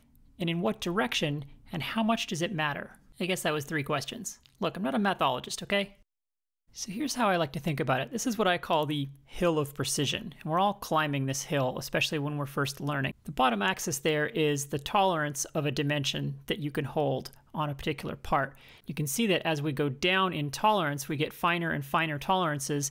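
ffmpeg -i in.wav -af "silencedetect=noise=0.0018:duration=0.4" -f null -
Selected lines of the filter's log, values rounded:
silence_start: 6.02
silence_end: 6.69 | silence_duration: 0.68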